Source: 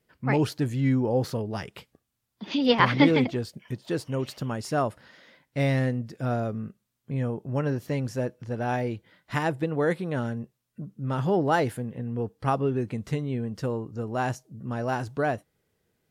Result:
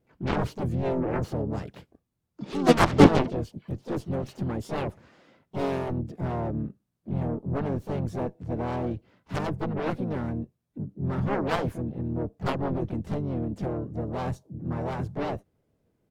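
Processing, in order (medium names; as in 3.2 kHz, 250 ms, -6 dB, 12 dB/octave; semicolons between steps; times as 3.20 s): band-stop 1.9 kHz, Q 20; Chebyshev shaper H 3 -33 dB, 5 -16 dB, 7 -9 dB, 8 -36 dB, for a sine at -5.5 dBFS; harmony voices -7 st -6 dB, +5 st -6 dB, +7 st -8 dB; tilt shelf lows +7 dB, about 1.1 kHz; trim -2.5 dB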